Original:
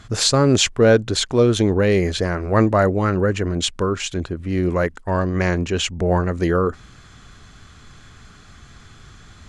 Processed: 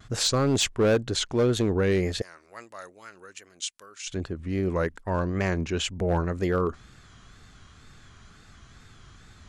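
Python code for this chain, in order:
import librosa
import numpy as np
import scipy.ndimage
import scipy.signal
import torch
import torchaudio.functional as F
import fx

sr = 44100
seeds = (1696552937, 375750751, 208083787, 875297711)

y = fx.differentiator(x, sr, at=(2.22, 4.07))
y = fx.wow_flutter(y, sr, seeds[0], rate_hz=2.1, depth_cents=99.0)
y = np.clip(y, -10.0 ** (-10.5 / 20.0), 10.0 ** (-10.5 / 20.0))
y = F.gain(torch.from_numpy(y), -6.5).numpy()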